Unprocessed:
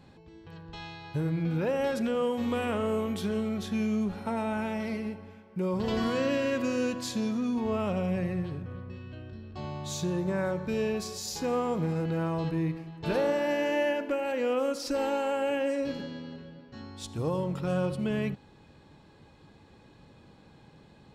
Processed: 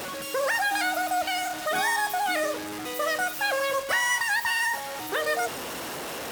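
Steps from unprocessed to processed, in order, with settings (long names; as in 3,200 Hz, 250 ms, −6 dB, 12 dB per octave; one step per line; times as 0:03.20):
linear delta modulator 32 kbit/s, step −31.5 dBFS
change of speed 3.35×
high-pass filter 85 Hz 6 dB per octave
level +3 dB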